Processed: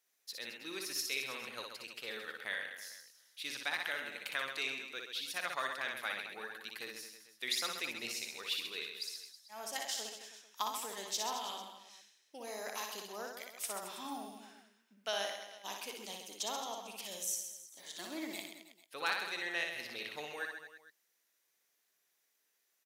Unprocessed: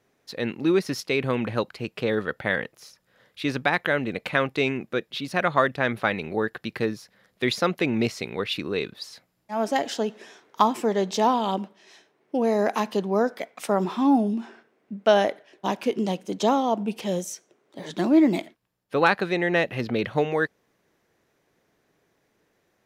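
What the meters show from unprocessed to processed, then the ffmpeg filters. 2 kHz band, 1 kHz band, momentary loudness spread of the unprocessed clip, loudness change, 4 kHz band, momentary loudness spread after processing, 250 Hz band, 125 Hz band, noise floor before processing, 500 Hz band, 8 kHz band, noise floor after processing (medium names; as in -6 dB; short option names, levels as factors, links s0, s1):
-11.0 dB, -17.0 dB, 10 LU, -14.5 dB, -5.0 dB, 13 LU, -27.0 dB, under -30 dB, -70 dBFS, -22.0 dB, 0.0 dB, -79 dBFS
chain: -af "aderivative,aecho=1:1:60|132|218.4|322.1|446.5:0.631|0.398|0.251|0.158|0.1,volume=0.841"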